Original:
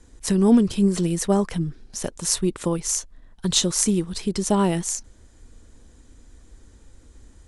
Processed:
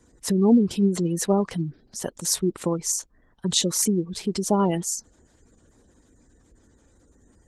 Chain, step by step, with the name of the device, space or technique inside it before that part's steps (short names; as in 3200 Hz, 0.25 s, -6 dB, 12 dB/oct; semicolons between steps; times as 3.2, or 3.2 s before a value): noise-suppressed video call (HPF 140 Hz 6 dB/oct; spectral gate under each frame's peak -25 dB strong; Opus 16 kbps 48000 Hz)